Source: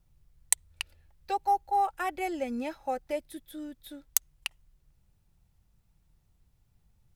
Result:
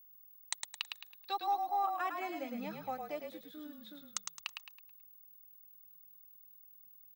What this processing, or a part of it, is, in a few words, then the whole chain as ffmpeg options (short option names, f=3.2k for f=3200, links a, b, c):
old television with a line whistle: -filter_complex "[0:a]asettb=1/sr,asplit=3[a][b][c];[a]atrim=end=0.674[d];[b]atrim=start=0.67:end=1.39,asetpts=PTS-STARTPTS,afade=t=in:d=0.004:c=qsin,afade=t=out:st=0.716:d=0.004:c=qsin,equalizer=f=3.7k:t=o:w=0.36:g=11[e];[c]atrim=start=1.386[f];[d][e]acrossfade=d=0.004:c1=hsin:c2=qsin[g];[g][f]acrossfade=d=0.004:c1=qsin:c2=hsin,highpass=f=180:w=0.5412,highpass=f=180:w=1.3066,equalizer=f=450:t=q:w=4:g=-9,equalizer=f=1.2k:t=q:w=4:g=10,equalizer=f=3.9k:t=q:w=4:g=5,lowpass=f=6.9k:w=0.5412,lowpass=f=6.9k:w=1.3066,aeval=exprs='val(0)+0.00355*sin(2*PI*15625*n/s)':c=same,asplit=6[h][i][j][k][l][m];[i]adelay=108,afreqshift=-40,volume=-5dB[n];[j]adelay=216,afreqshift=-80,volume=-13.4dB[o];[k]adelay=324,afreqshift=-120,volume=-21.8dB[p];[l]adelay=432,afreqshift=-160,volume=-30.2dB[q];[m]adelay=540,afreqshift=-200,volume=-38.6dB[r];[h][n][o][p][q][r]amix=inputs=6:normalize=0,volume=-8dB"